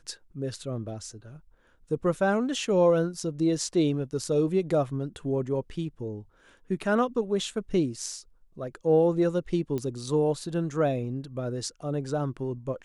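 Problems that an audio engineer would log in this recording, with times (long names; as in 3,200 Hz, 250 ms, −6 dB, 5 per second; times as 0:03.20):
0:09.78: click −20 dBFS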